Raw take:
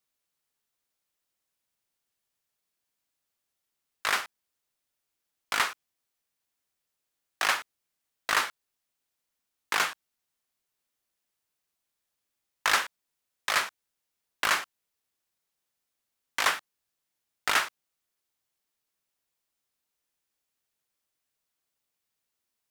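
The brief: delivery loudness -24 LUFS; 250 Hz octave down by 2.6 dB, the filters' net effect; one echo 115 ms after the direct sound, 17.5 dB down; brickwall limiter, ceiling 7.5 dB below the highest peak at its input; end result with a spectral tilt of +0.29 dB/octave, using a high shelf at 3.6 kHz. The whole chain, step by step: peaking EQ 250 Hz -3.5 dB; treble shelf 3.6 kHz -8 dB; peak limiter -19 dBFS; delay 115 ms -17.5 dB; trim +10.5 dB

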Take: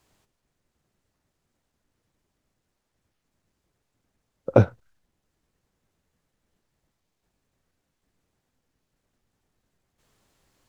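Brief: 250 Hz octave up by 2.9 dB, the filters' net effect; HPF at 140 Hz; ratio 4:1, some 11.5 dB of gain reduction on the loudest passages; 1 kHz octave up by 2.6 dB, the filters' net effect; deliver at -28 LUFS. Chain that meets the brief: high-pass 140 Hz; peaking EQ 250 Hz +4 dB; peaking EQ 1 kHz +3.5 dB; compression 4:1, threshold -23 dBFS; trim +4 dB

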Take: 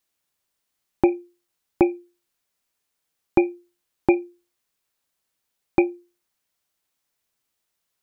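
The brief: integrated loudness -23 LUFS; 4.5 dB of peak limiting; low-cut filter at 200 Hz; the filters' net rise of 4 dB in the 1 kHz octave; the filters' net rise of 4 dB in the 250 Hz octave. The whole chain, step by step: high-pass 200 Hz; peaking EQ 250 Hz +7.5 dB; peaking EQ 1 kHz +5 dB; trim -0.5 dB; peak limiter -5 dBFS

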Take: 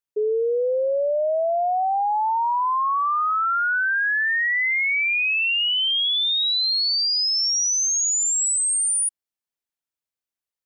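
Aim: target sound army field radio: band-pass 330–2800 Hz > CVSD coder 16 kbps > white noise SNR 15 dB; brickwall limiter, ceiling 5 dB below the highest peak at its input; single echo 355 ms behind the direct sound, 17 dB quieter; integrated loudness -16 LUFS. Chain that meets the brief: peak limiter -23.5 dBFS; band-pass 330–2800 Hz; delay 355 ms -17 dB; CVSD coder 16 kbps; white noise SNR 15 dB; trim +11 dB

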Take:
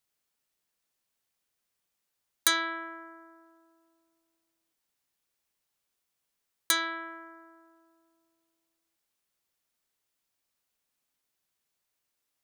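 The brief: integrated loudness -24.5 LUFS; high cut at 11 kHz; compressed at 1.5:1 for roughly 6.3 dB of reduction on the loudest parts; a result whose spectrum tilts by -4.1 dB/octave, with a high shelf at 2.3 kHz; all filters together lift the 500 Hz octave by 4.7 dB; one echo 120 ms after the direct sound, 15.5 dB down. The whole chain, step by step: low-pass 11 kHz; peaking EQ 500 Hz +8.5 dB; treble shelf 2.3 kHz -3 dB; compression 1.5:1, threshold -40 dBFS; delay 120 ms -15.5 dB; trim +13.5 dB

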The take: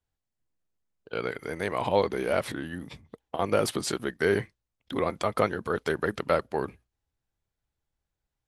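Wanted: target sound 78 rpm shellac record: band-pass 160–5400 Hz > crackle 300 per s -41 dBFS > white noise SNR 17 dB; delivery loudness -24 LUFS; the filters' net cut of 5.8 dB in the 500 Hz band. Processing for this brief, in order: band-pass 160–5400 Hz; peaking EQ 500 Hz -7 dB; crackle 300 per s -41 dBFS; white noise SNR 17 dB; trim +8.5 dB

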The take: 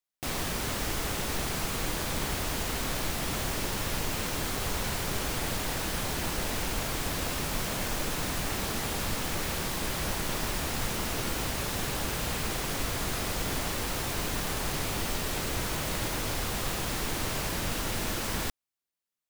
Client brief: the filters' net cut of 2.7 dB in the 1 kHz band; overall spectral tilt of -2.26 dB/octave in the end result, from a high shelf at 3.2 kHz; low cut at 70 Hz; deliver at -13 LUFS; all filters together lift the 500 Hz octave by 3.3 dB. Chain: high-pass 70 Hz; peaking EQ 500 Hz +5.5 dB; peaking EQ 1 kHz -6 dB; treble shelf 3.2 kHz +5.5 dB; trim +15 dB

